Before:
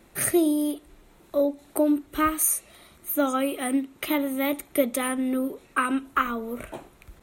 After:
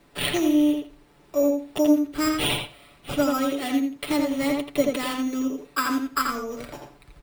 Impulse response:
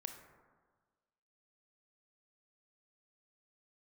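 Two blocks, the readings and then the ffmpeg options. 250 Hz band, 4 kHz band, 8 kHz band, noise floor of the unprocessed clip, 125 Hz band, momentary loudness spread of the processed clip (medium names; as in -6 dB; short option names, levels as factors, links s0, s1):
+2.5 dB, +9.5 dB, -6.0 dB, -56 dBFS, no reading, 12 LU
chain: -filter_complex "[0:a]acrusher=samples=7:mix=1:aa=0.000001,aecho=1:1:6.9:0.53,asplit=2[s0][s1];[s1]adelay=84,lowpass=f=4000:p=1,volume=0.708,asplit=2[s2][s3];[s3]adelay=84,lowpass=f=4000:p=1,volume=0.17,asplit=2[s4][s5];[s5]adelay=84,lowpass=f=4000:p=1,volume=0.17[s6];[s0][s2][s4][s6]amix=inputs=4:normalize=0,volume=0.75"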